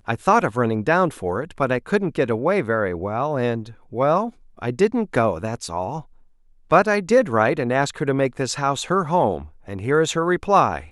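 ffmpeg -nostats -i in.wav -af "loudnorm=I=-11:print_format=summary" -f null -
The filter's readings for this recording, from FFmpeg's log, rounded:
Input Integrated:    -21.0 LUFS
Input True Peak:      -2.5 dBTP
Input LRA:             2.2 LU
Input Threshold:     -31.3 LUFS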